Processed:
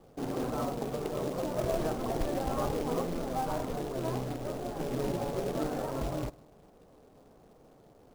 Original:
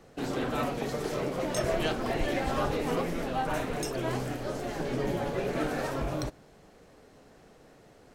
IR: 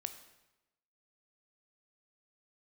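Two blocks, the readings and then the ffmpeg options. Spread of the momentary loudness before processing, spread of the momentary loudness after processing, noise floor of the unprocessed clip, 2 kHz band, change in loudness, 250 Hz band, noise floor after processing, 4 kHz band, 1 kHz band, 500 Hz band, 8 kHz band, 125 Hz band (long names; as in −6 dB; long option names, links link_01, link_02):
5 LU, 4 LU, −57 dBFS, −10.0 dB, −2.5 dB, −2.0 dB, −59 dBFS, −7.0 dB, −2.5 dB, −2.0 dB, −4.5 dB, −1.5 dB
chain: -filter_complex "[0:a]lowpass=frequency=1200:width=0.5412,lowpass=frequency=1200:width=1.3066,asplit=2[link_01][link_02];[1:a]atrim=start_sample=2205[link_03];[link_02][link_03]afir=irnorm=-1:irlink=0,volume=-7dB[link_04];[link_01][link_04]amix=inputs=2:normalize=0,acrusher=bits=3:mode=log:mix=0:aa=0.000001,volume=-4.5dB"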